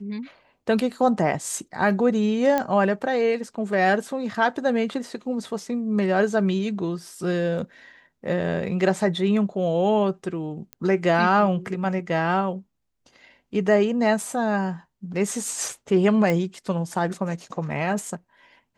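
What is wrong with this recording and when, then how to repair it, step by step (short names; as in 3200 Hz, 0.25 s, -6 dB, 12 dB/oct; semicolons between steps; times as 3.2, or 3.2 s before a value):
2.58 pop -10 dBFS
10.73 pop -19 dBFS
16.3 pop -12 dBFS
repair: de-click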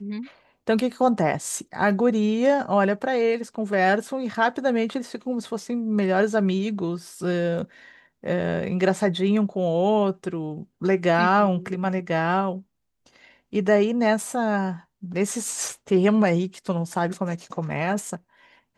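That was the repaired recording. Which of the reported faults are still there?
none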